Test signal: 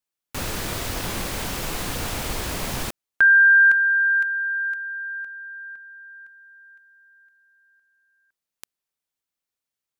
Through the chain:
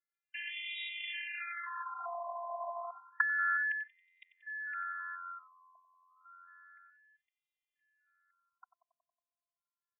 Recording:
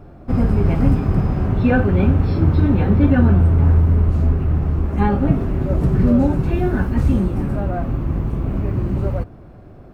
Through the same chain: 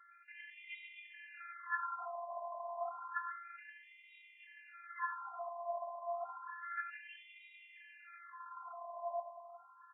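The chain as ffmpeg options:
ffmpeg -i in.wav -filter_complex "[0:a]asplit=7[link_01][link_02][link_03][link_04][link_05][link_06][link_07];[link_02]adelay=92,afreqshift=-88,volume=-12.5dB[link_08];[link_03]adelay=184,afreqshift=-176,volume=-17.2dB[link_09];[link_04]adelay=276,afreqshift=-264,volume=-22dB[link_10];[link_05]adelay=368,afreqshift=-352,volume=-26.7dB[link_11];[link_06]adelay=460,afreqshift=-440,volume=-31.4dB[link_12];[link_07]adelay=552,afreqshift=-528,volume=-36.2dB[link_13];[link_01][link_08][link_09][link_10][link_11][link_12][link_13]amix=inputs=7:normalize=0,acompressor=threshold=-36dB:ratio=1.5:attack=39:release=81:detection=peak,afftfilt=real='hypot(re,im)*cos(PI*b)':imag='0':win_size=512:overlap=0.75,equalizer=frequency=140:width_type=o:width=0.5:gain=14,afftfilt=real='re*between(b*sr/1024,810*pow(2700/810,0.5+0.5*sin(2*PI*0.3*pts/sr))/1.41,810*pow(2700/810,0.5+0.5*sin(2*PI*0.3*pts/sr))*1.41)':imag='im*between(b*sr/1024,810*pow(2700/810,0.5+0.5*sin(2*PI*0.3*pts/sr))/1.41,810*pow(2700/810,0.5+0.5*sin(2*PI*0.3*pts/sr))*1.41)':win_size=1024:overlap=0.75,volume=3dB" out.wav

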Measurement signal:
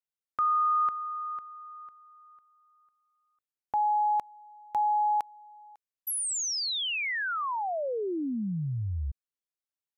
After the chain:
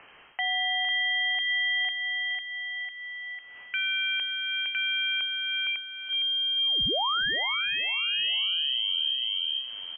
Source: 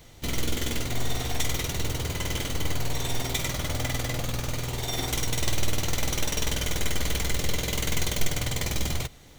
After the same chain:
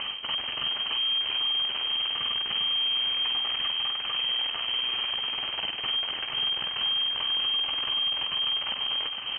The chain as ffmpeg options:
ffmpeg -i in.wav -filter_complex "[0:a]asplit=2[link_01][link_02];[link_02]acompressor=mode=upward:threshold=-28dB:ratio=4:attack=0.99:release=349:knee=2.83:detection=peak,volume=-0.5dB[link_03];[link_01][link_03]amix=inputs=2:normalize=0,aeval=exprs='0.562*(cos(1*acos(clip(val(0)/0.562,-1,1)))-cos(1*PI/2))+0.126*(cos(8*acos(clip(val(0)/0.562,-1,1)))-cos(8*PI/2))':channel_layout=same,areverse,acompressor=threshold=-21dB:ratio=12:attack=0.1:release=360:knee=1:detection=peak,areverse,lowpass=frequency=2700:width_type=q:width=0.5098,lowpass=frequency=2700:width_type=q:width=0.6013,lowpass=frequency=2700:width_type=q:width=0.9,lowpass=frequency=2700:width_type=q:width=2.563,afreqshift=-3200,aecho=1:1:460|920|1380|1840:0.355|0.128|0.046|0.0166,alimiter=level_in=1dB:limit=-24dB:level=0:latency=1:release=126,volume=-1dB,volume=4.5dB" out.wav

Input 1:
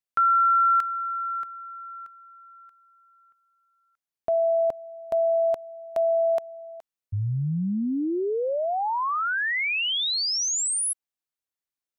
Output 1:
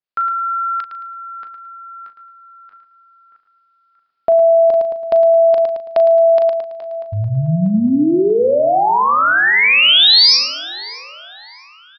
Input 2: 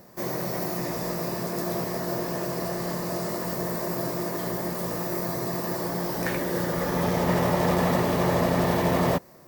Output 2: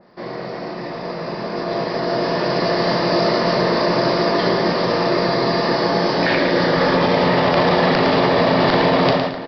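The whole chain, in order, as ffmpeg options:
ffmpeg -i in.wav -filter_complex "[0:a]aeval=exprs='(mod(3.76*val(0)+1,2)-1)/3.76':channel_layout=same,asplit=2[link_01][link_02];[link_02]adelay=640,lowpass=frequency=4300:poles=1,volume=-19dB,asplit=2[link_03][link_04];[link_04]adelay=640,lowpass=frequency=4300:poles=1,volume=0.51,asplit=2[link_05][link_06];[link_06]adelay=640,lowpass=frequency=4300:poles=1,volume=0.51,asplit=2[link_07][link_08];[link_08]adelay=640,lowpass=frequency=4300:poles=1,volume=0.51[link_09];[link_03][link_05][link_07][link_09]amix=inputs=4:normalize=0[link_10];[link_01][link_10]amix=inputs=2:normalize=0,aresample=11025,aresample=44100,equalizer=frequency=68:width_type=o:width=1.9:gain=-10.5,asplit=2[link_11][link_12];[link_12]adelay=38,volume=-10.5dB[link_13];[link_11][link_13]amix=inputs=2:normalize=0,asplit=2[link_14][link_15];[link_15]aecho=0:1:110|220|330:0.355|0.0993|0.0278[link_16];[link_14][link_16]amix=inputs=2:normalize=0,dynaudnorm=framelen=900:gausssize=5:maxgain=12dB,alimiter=level_in=8.5dB:limit=-1dB:release=50:level=0:latency=1,adynamicequalizer=threshold=0.0562:dfrequency=2600:dqfactor=0.7:tfrequency=2600:tqfactor=0.7:attack=5:release=100:ratio=0.375:range=3:mode=boostabove:tftype=highshelf,volume=-6dB" out.wav

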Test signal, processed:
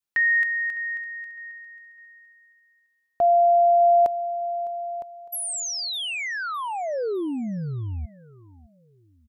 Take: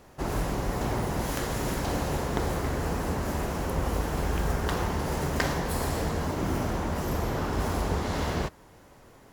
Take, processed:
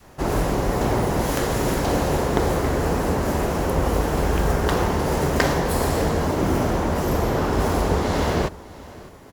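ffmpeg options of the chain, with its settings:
ffmpeg -i in.wav -af "adynamicequalizer=threshold=0.0126:dfrequency=460:dqfactor=0.84:tfrequency=460:tqfactor=0.84:attack=5:release=100:ratio=0.375:range=2:mode=boostabove:tftype=bell,aecho=1:1:607|1214|1821:0.0944|0.033|0.0116,volume=6dB" out.wav

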